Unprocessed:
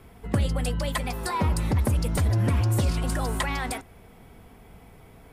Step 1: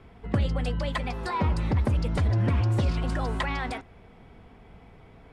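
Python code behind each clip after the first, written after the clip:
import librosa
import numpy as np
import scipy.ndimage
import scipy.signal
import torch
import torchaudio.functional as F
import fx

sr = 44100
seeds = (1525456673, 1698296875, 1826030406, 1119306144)

y = scipy.signal.sosfilt(scipy.signal.butter(2, 4200.0, 'lowpass', fs=sr, output='sos'), x)
y = y * 10.0 ** (-1.0 / 20.0)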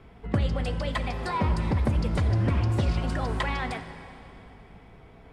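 y = fx.rev_plate(x, sr, seeds[0], rt60_s=3.0, hf_ratio=0.9, predelay_ms=0, drr_db=8.5)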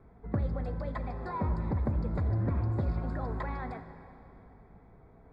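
y = np.convolve(x, np.full(15, 1.0 / 15))[:len(x)]
y = y * 10.0 ** (-5.5 / 20.0)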